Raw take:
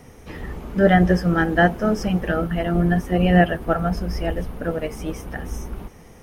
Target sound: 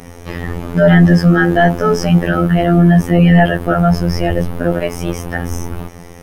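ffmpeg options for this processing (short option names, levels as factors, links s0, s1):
-af "afftfilt=real='hypot(re,im)*cos(PI*b)':imag='0':win_size=2048:overlap=0.75,apsyclip=5.96,volume=0.794"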